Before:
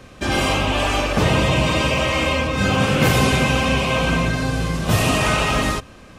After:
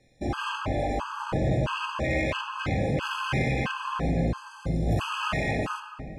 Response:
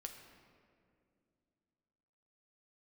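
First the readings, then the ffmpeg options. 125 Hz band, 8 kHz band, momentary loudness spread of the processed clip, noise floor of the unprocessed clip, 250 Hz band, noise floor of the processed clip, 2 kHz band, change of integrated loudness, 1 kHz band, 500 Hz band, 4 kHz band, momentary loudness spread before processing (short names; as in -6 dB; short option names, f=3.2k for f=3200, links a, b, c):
-8.5 dB, -19.0 dB, 5 LU, -43 dBFS, -9.5 dB, -46 dBFS, -11.0 dB, -10.0 dB, -9.0 dB, -9.5 dB, -14.5 dB, 5 LU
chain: -filter_complex "[0:a]afwtdn=0.1,lowpass=10k,highshelf=f=2.4k:g=7.5,asplit=2[a][b];[b]alimiter=limit=-14.5dB:level=0:latency=1:release=15,volume=-1dB[c];[a][c]amix=inputs=2:normalize=0,asoftclip=type=tanh:threshold=-12dB[d];[1:a]atrim=start_sample=2205[e];[d][e]afir=irnorm=-1:irlink=0,afftfilt=real='re*gt(sin(2*PI*1.5*pts/sr)*(1-2*mod(floor(b*sr/1024/840),2)),0)':imag='im*gt(sin(2*PI*1.5*pts/sr)*(1-2*mod(floor(b*sr/1024/840),2)),0)':win_size=1024:overlap=0.75,volume=-3.5dB"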